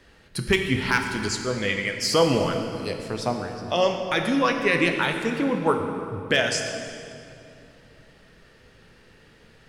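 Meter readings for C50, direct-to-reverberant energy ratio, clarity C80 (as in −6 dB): 5.5 dB, 4.0 dB, 6.5 dB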